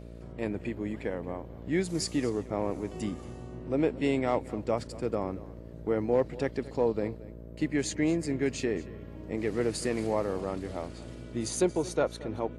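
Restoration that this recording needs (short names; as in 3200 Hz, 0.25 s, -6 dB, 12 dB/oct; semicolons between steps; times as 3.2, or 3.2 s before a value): de-hum 57.8 Hz, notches 11; inverse comb 0.228 s -18.5 dB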